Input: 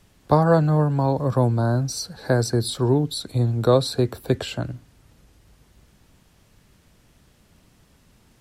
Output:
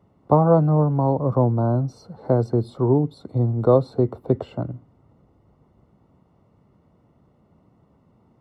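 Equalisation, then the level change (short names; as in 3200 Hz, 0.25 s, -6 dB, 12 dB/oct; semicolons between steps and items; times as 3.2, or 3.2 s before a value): polynomial smoothing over 65 samples; HPF 97 Hz 12 dB/oct; +1.5 dB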